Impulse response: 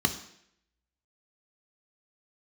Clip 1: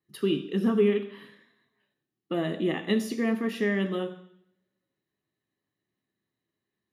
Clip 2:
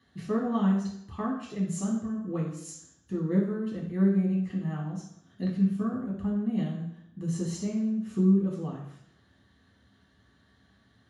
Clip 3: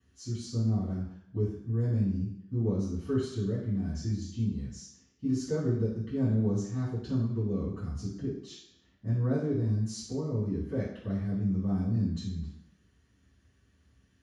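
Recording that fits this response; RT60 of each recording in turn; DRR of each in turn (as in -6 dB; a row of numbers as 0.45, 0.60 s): 1; 0.70, 0.70, 0.70 s; 6.0, -3.5, -12.0 dB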